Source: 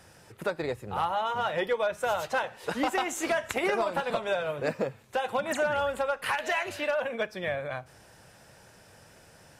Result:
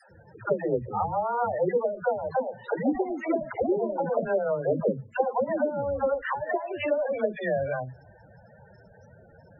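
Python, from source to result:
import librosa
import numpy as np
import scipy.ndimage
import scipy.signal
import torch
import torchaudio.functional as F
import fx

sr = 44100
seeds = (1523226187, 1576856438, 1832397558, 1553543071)

y = fx.env_lowpass_down(x, sr, base_hz=370.0, full_db=-23.0)
y = fx.dispersion(y, sr, late='lows', ms=114.0, hz=370.0)
y = fx.spec_topn(y, sr, count=16)
y = y * 10.0 ** (6.0 / 20.0)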